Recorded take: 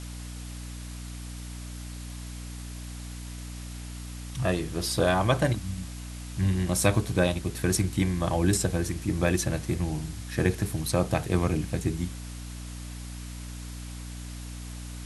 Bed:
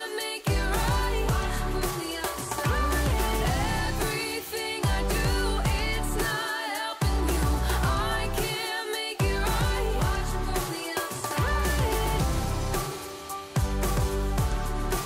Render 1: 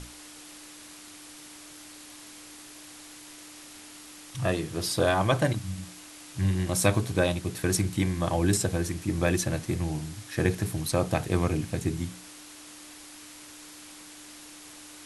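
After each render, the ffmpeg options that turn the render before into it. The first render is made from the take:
-af "bandreject=f=60:t=h:w=6,bandreject=f=120:t=h:w=6,bandreject=f=180:t=h:w=6,bandreject=f=240:t=h:w=6"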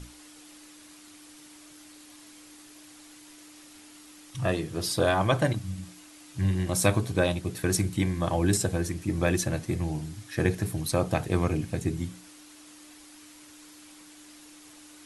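-af "afftdn=nr=6:nf=-47"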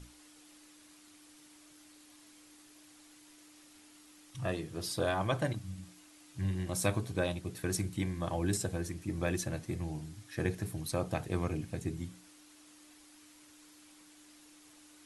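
-af "volume=-8dB"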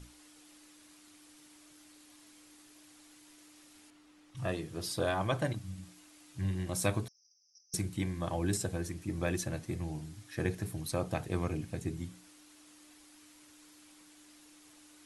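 -filter_complex "[0:a]asettb=1/sr,asplit=3[a][b][c];[a]atrim=end=3.904[d];[b]atrim=start=3.9:end=4.37,asetpts=PTS-STARTPTS,afade=t=in:d=0.004:c=qsin,afade=t=out:st=0.466:d=0.004:c=qsin,aemphasis=mode=reproduction:type=75kf[e];[c]atrim=start=4.366[f];[d][e]acrossfade=d=0.004:c1=hsin:c2=qsin[g];[g][f]acrossfade=d=0.004:c1=qsin:c2=hsin,asettb=1/sr,asplit=3[h][i][j];[h]atrim=end=7.084[k];[i]atrim=start=7.08:end=7.74,asetpts=PTS-STARTPTS,afade=t=in:d=0.004:c=qsin,afade=t=out:st=0.656:d=0.004:c=qsin,asuperpass=centerf=5500:order=12:qfactor=4.3[l];[j]atrim=start=7.736[m];[k][l]acrossfade=d=0.004:c1=hsin:c2=qsin[n];[n][m]acrossfade=d=0.004:c1=qsin:c2=hsin"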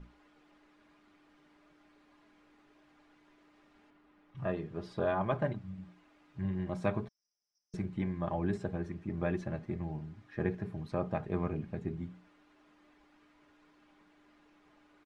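-af "lowpass=1.7k,aecho=1:1:4.9:0.46"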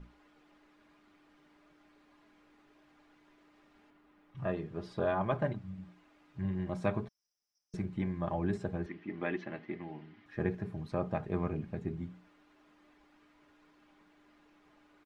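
-filter_complex "[0:a]asettb=1/sr,asplit=3[a][b][c];[a]atrim=end=8.864[d];[b]atrim=start=8.86:end=10.26,asetpts=PTS-STARTPTS,afade=t=in:d=0.004:c=qsin,afade=t=out:st=1.396:d=0.004:c=qsin,highpass=280,equalizer=f=280:t=q:w=4:g=6,equalizer=f=560:t=q:w=4:g=-5,equalizer=f=2k:t=q:w=4:g=9,equalizer=f=3k:t=q:w=4:g=7,lowpass=f=4.9k:w=0.5412,lowpass=f=4.9k:w=1.3066[e];[c]atrim=start=10.256[f];[d][e]acrossfade=d=0.004:c1=hsin:c2=qsin[g];[g][f]acrossfade=d=0.004:c1=qsin:c2=hsin"

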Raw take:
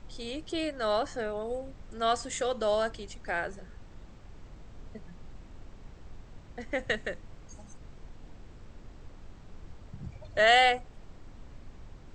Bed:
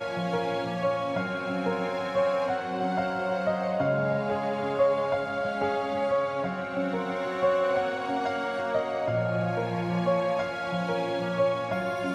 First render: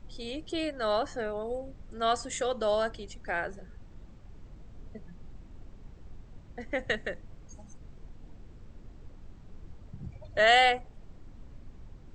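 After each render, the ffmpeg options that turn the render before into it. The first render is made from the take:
-af "afftdn=nr=6:nf=-51"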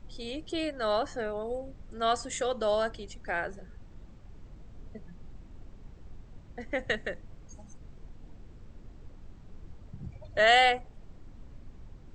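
-af anull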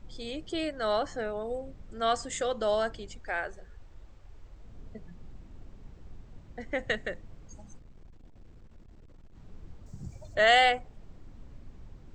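-filter_complex "[0:a]asettb=1/sr,asplit=3[a][b][c];[a]atrim=end=3.194[d];[b]atrim=start=3.19:end=4.64,asetpts=PTS-STARTPTS,afade=t=in:d=0.004:c=qsin,afade=t=out:st=1.446:d=0.004:c=qsin,equalizer=f=190:w=1:g=-11.5[e];[c]atrim=start=4.636[f];[d][e]acrossfade=d=0.004:c1=hsin:c2=qsin[g];[g][f]acrossfade=d=0.004:c1=qsin:c2=hsin,asettb=1/sr,asplit=3[h][i][j];[h]atrim=end=7.794[k];[i]atrim=start=7.79:end=9.36,asetpts=PTS-STARTPTS,afade=t=in:d=0.004:c=qsin,afade=t=out:st=1.566:d=0.004:c=qsin,aeval=exprs='(tanh(224*val(0)+0.3)-tanh(0.3))/224':c=same[l];[j]atrim=start=9.356[m];[k][l]acrossfade=d=0.004:c1=hsin:c2=qsin[n];[n][m]acrossfade=d=0.004:c1=qsin:c2=hsin,asettb=1/sr,asplit=3[o][p][q];[o]atrim=end=9.864[r];[p]atrim=start=9.86:end=10.35,asetpts=PTS-STARTPTS,afade=t=in:d=0.004:c=qsin,afade=t=out:st=0.486:d=0.004:c=qsin,highshelf=f=4.7k:t=q:w=1.5:g=12.5[s];[q]atrim=start=10.346[t];[r][s]acrossfade=d=0.004:c1=hsin:c2=qsin[u];[u][t]acrossfade=d=0.004:c1=qsin:c2=hsin"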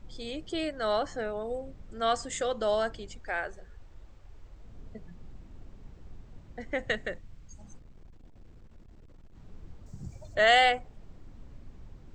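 -filter_complex "[0:a]asettb=1/sr,asplit=3[a][b][c];[a]atrim=end=7.184[d];[b]atrim=start=7.18:end=7.61,asetpts=PTS-STARTPTS,afade=t=in:d=0.004:c=qsin,afade=t=out:st=0.426:d=0.004:c=qsin,equalizer=f=500:w=0.5:g=-9[e];[c]atrim=start=7.606[f];[d][e]acrossfade=d=0.004:c1=hsin:c2=qsin[g];[g][f]acrossfade=d=0.004:c1=qsin:c2=hsin"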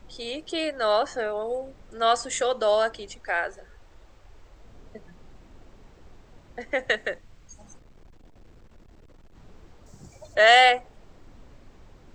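-filter_complex "[0:a]acrossover=split=330[a][b];[a]alimiter=level_in=17dB:limit=-24dB:level=0:latency=1:release=357,volume=-17dB[c];[b]acontrast=68[d];[c][d]amix=inputs=2:normalize=0"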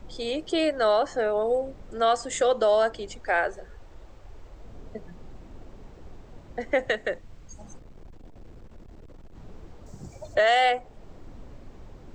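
-filter_complex "[0:a]acrossover=split=920[a][b];[a]acontrast=39[c];[c][b]amix=inputs=2:normalize=0,alimiter=limit=-12.5dB:level=0:latency=1:release=440"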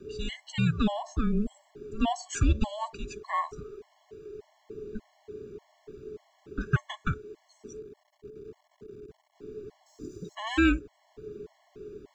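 -af "afreqshift=-440,afftfilt=real='re*gt(sin(2*PI*1.7*pts/sr)*(1-2*mod(floor(b*sr/1024/570),2)),0)':imag='im*gt(sin(2*PI*1.7*pts/sr)*(1-2*mod(floor(b*sr/1024/570),2)),0)':win_size=1024:overlap=0.75"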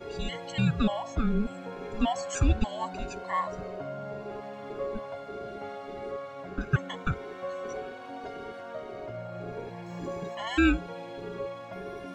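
-filter_complex "[1:a]volume=-12dB[a];[0:a][a]amix=inputs=2:normalize=0"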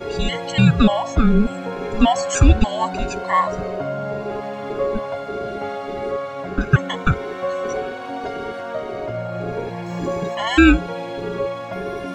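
-af "volume=12dB,alimiter=limit=-2dB:level=0:latency=1"

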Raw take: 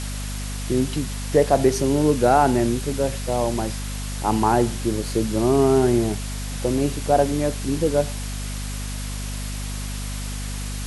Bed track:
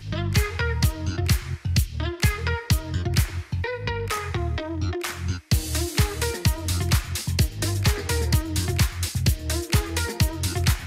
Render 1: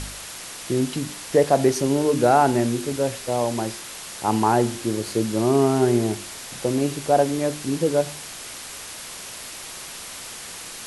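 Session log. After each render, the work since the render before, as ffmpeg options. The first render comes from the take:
-af "bandreject=f=50:t=h:w=4,bandreject=f=100:t=h:w=4,bandreject=f=150:t=h:w=4,bandreject=f=200:t=h:w=4,bandreject=f=250:t=h:w=4,bandreject=f=300:t=h:w=4,bandreject=f=350:t=h:w=4,bandreject=f=400:t=h:w=4"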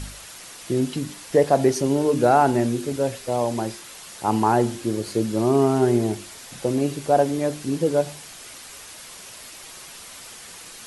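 -af "afftdn=nr=6:nf=-37"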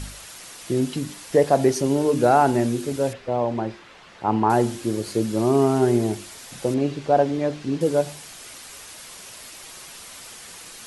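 -filter_complex "[0:a]asettb=1/sr,asplit=3[a][b][c];[a]atrim=end=3.134[d];[b]atrim=start=3.13:end=4.5,asetpts=PTS-STARTPTS,afade=t=in:d=0.004:c=qsin,afade=t=out:st=1.366:d=0.004:c=qsin,lowpass=2.6k[e];[c]atrim=start=4.496[f];[d][e]acrossfade=d=0.004:c1=hsin:c2=qsin[g];[g][f]acrossfade=d=0.004:c1=qsin:c2=hsin,asettb=1/sr,asplit=3[h][i][j];[h]atrim=end=6.744[k];[i]atrim=start=6.74:end=7.81,asetpts=PTS-STARTPTS,afade=t=in:d=0.004:c=qsin,afade=t=out:st=1.066:d=0.004:c=qsin,lowpass=4.4k[l];[j]atrim=start=7.806[m];[k][l]acrossfade=d=0.004:c1=hsin:c2=qsin[n];[n][m]acrossfade=d=0.004:c1=qsin:c2=hsin"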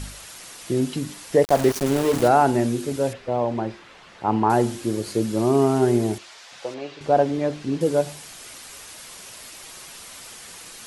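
-filter_complex "[0:a]asettb=1/sr,asplit=3[a][b][c];[a]atrim=end=1.444[d];[b]atrim=start=1.44:end=2.28,asetpts=PTS-STARTPTS,afade=t=in:d=0.004:c=qsin,afade=t=out:st=0.836:d=0.004:c=qsin,aeval=exprs='val(0)*gte(abs(val(0)),0.0631)':c=same[e];[c]atrim=start=2.276[f];[d][e]acrossfade=d=0.004:c1=hsin:c2=qsin[g];[g][f]acrossfade=d=0.004:c1=qsin:c2=hsin,asettb=1/sr,asplit=3[h][i][j];[h]atrim=end=6.184[k];[i]atrim=start=6.18:end=7.01,asetpts=PTS-STARTPTS,afade=t=in:d=0.004:c=qsin,afade=t=out:st=0.826:d=0.004:c=qsin,acrossover=split=520 6400:gain=0.1 1 0.0708[l][m][n];[l][m][n]amix=inputs=3:normalize=0[o];[j]atrim=start=7.006[p];[k][o]acrossfade=d=0.004:c1=hsin:c2=qsin[q];[q][p]acrossfade=d=0.004:c1=qsin:c2=hsin"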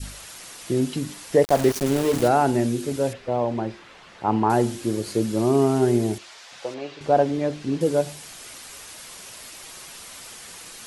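-af "adynamicequalizer=threshold=0.0224:dfrequency=1000:dqfactor=0.84:tfrequency=1000:tqfactor=0.84:attack=5:release=100:ratio=0.375:range=2:mode=cutabove:tftype=bell"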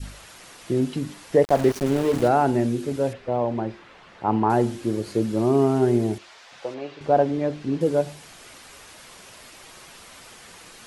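-af "highshelf=f=4k:g=-9.5"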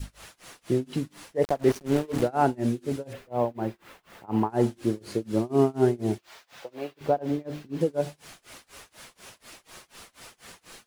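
-af "acrusher=bits=8:mix=0:aa=0.000001,tremolo=f=4.1:d=0.97"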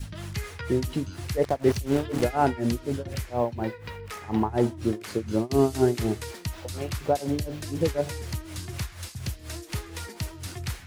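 -filter_complex "[1:a]volume=-11.5dB[a];[0:a][a]amix=inputs=2:normalize=0"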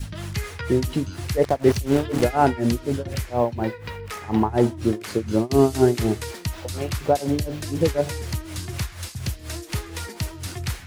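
-af "volume=4.5dB"

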